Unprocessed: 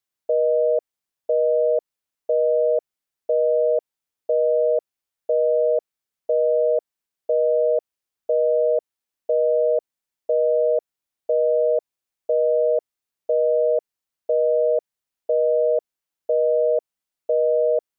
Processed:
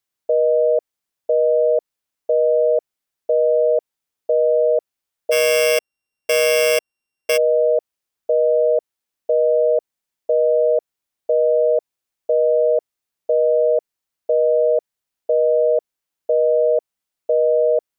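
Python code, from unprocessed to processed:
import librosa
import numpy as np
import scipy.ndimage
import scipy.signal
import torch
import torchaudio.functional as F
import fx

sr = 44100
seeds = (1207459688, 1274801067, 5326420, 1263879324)

y = fx.sample_sort(x, sr, block=16, at=(5.31, 7.36), fade=0.02)
y = y * 10.0 ** (3.0 / 20.0)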